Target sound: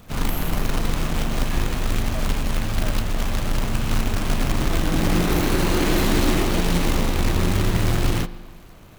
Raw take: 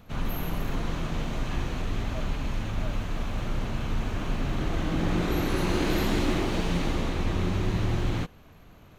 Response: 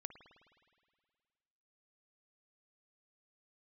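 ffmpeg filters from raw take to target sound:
-filter_complex "[0:a]acrusher=bits=2:mode=log:mix=0:aa=0.000001,asplit=2[s0][s1];[1:a]atrim=start_sample=2205,asetrate=57330,aresample=44100[s2];[s1][s2]afir=irnorm=-1:irlink=0,volume=1.88[s3];[s0][s3]amix=inputs=2:normalize=0,volume=3.55,asoftclip=hard,volume=0.282"

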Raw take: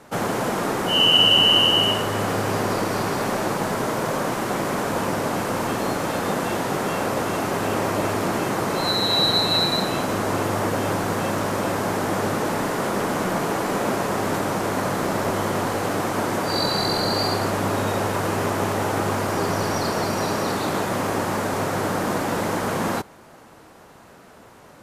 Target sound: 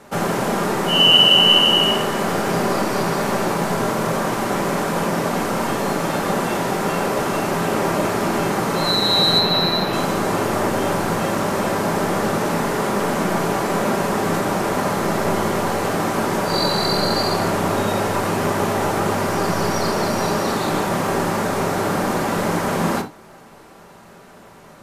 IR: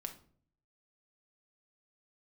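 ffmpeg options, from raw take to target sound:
-filter_complex "[0:a]asettb=1/sr,asplit=3[s0][s1][s2];[s0]atrim=end=9.394[s3];[s1]atrim=start=9.39:end=9.93,asetpts=PTS-STARTPTS,afade=t=in:d=0.004:c=qsin,afade=t=out:st=0.536:d=0.004:c=qsin,equalizer=f=8100:w=1.5:g=-12[s4];[s2]atrim=start=9.926[s5];[s3][s4]acrossfade=d=0.004:c1=hsin:c2=qsin[s6];[s6][s5]acrossfade=d=0.004:c1=qsin:c2=hsin[s7];[1:a]atrim=start_sample=2205,afade=t=out:st=0.14:d=0.01,atrim=end_sample=6615[s8];[s7][s8]afir=irnorm=-1:irlink=0,volume=1.88"

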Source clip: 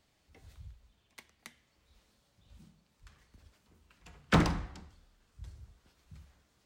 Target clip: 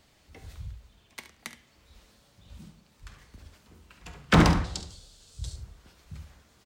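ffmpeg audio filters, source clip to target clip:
-filter_complex "[0:a]asettb=1/sr,asplit=3[s0][s1][s2];[s0]atrim=end=4.644[s3];[s1]atrim=start=4.64:end=5.56,asetpts=PTS-STARTPTS,afade=t=in:d=0.004:c=qsin,afade=t=out:st=0.916:d=0.004:c=qsin,equalizer=f=125:t=o:w=1:g=3,equalizer=f=250:t=o:w=1:g=-6,equalizer=f=500:t=o:w=1:g=4,equalizer=f=1000:t=o:w=1:g=-4,equalizer=f=2000:t=o:w=1:g=-7,equalizer=f=4000:t=o:w=1:g=11,equalizer=f=8000:t=o:w=1:g=12[s4];[s2]atrim=start=5.556[s5];[s3][s4]acrossfade=d=0.004:c1=hsin:c2=qsin[s6];[s6][s5]acrossfade=d=0.004:c1=qsin:c2=hsin,aecho=1:1:49|71:0.158|0.237,alimiter=level_in=7.08:limit=0.891:release=50:level=0:latency=1,volume=0.447"

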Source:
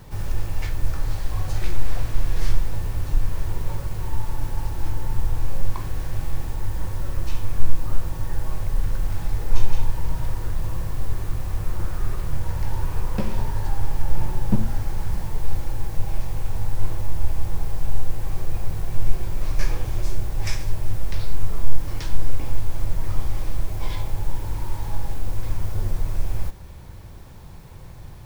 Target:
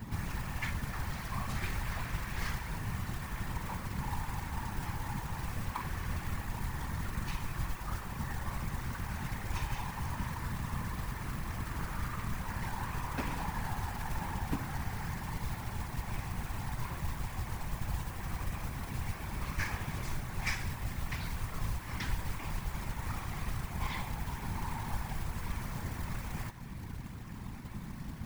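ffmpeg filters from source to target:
-filter_complex "[0:a]equalizer=f=125:t=o:w=1:g=11,equalizer=f=250:t=o:w=1:g=8,equalizer=f=500:t=o:w=1:g=-6,equalizer=f=1000:t=o:w=1:g=7,equalizer=f=2000:t=o:w=1:g=9,acrossover=split=420[s0][s1];[s0]acompressor=threshold=0.0562:ratio=10[s2];[s2][s1]amix=inputs=2:normalize=0,acrusher=bits=4:mode=log:mix=0:aa=0.000001,afftfilt=real='hypot(re,im)*cos(2*PI*random(0))':imag='hypot(re,im)*sin(2*PI*random(1))':win_size=512:overlap=0.75,volume=0.794"

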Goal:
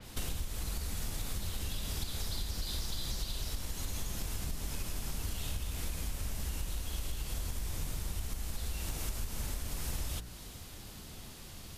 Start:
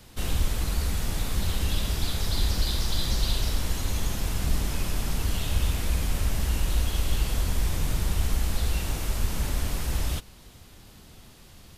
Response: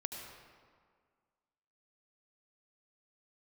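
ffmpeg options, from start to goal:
-af "bandreject=f=59.16:t=h:w=4,bandreject=f=118.32:t=h:w=4,bandreject=f=177.48:t=h:w=4,bandreject=f=236.64:t=h:w=4,bandreject=f=295.8:t=h:w=4,bandreject=f=354.96:t=h:w=4,bandreject=f=414.12:t=h:w=4,bandreject=f=473.28:t=h:w=4,bandreject=f=532.44:t=h:w=4,bandreject=f=591.6:t=h:w=4,bandreject=f=650.76:t=h:w=4,bandreject=f=709.92:t=h:w=4,bandreject=f=769.08:t=h:w=4,bandreject=f=828.24:t=h:w=4,bandreject=f=887.4:t=h:w=4,bandreject=f=946.56:t=h:w=4,bandreject=f=1005.72:t=h:w=4,bandreject=f=1064.88:t=h:w=4,bandreject=f=1124.04:t=h:w=4,bandreject=f=1183.2:t=h:w=4,bandreject=f=1242.36:t=h:w=4,bandreject=f=1301.52:t=h:w=4,bandreject=f=1360.68:t=h:w=4,bandreject=f=1419.84:t=h:w=4,bandreject=f=1479:t=h:w=4,bandreject=f=1538.16:t=h:w=4,bandreject=f=1597.32:t=h:w=4,bandreject=f=1656.48:t=h:w=4,bandreject=f=1715.64:t=h:w=4,bandreject=f=1774.8:t=h:w=4,bandreject=f=1833.96:t=h:w=4,bandreject=f=1893.12:t=h:w=4,bandreject=f=1952.28:t=h:w=4,acompressor=threshold=0.02:ratio=12,adynamicequalizer=threshold=0.00126:dfrequency=4400:dqfactor=0.7:tfrequency=4400:tqfactor=0.7:attack=5:release=100:ratio=0.375:range=2.5:mode=boostabove:tftype=highshelf,volume=1.19"

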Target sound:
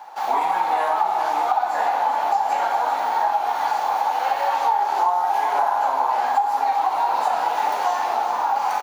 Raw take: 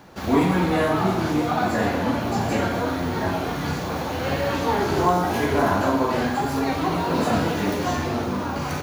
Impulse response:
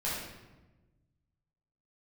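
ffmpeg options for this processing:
-filter_complex "[0:a]highpass=f=830:t=q:w=9.4,asplit=2[s0][s1];[s1]aecho=0:1:395:0.316[s2];[s0][s2]amix=inputs=2:normalize=0,acompressor=threshold=0.158:ratio=6,volume=0.891"

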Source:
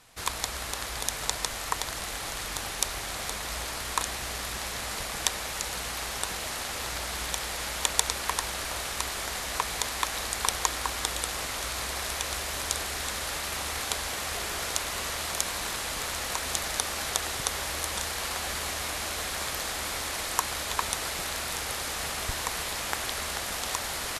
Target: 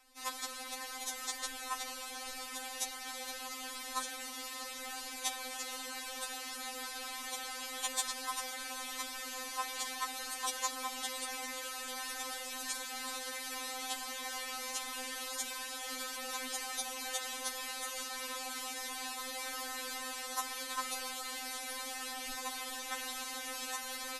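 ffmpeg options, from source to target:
-af "asoftclip=type=hard:threshold=0.75,afftfilt=real='re*3.46*eq(mod(b,12),0)':imag='im*3.46*eq(mod(b,12),0)':win_size=2048:overlap=0.75,volume=0.501"

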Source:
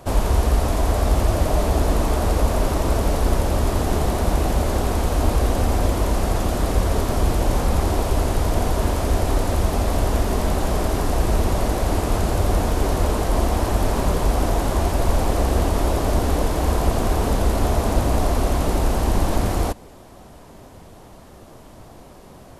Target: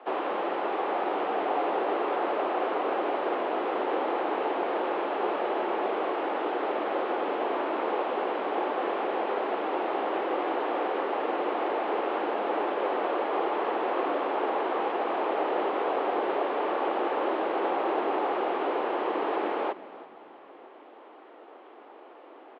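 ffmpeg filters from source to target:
-filter_complex "[0:a]highpass=f=190:t=q:w=0.5412,highpass=f=190:t=q:w=1.307,lowpass=f=3000:t=q:w=0.5176,lowpass=f=3000:t=q:w=0.7071,lowpass=f=3000:t=q:w=1.932,afreqshift=120,asplit=4[s0][s1][s2][s3];[s1]adelay=329,afreqshift=-36,volume=0.141[s4];[s2]adelay=658,afreqshift=-72,volume=0.0437[s5];[s3]adelay=987,afreqshift=-108,volume=0.0136[s6];[s0][s4][s5][s6]amix=inputs=4:normalize=0,volume=0.668"

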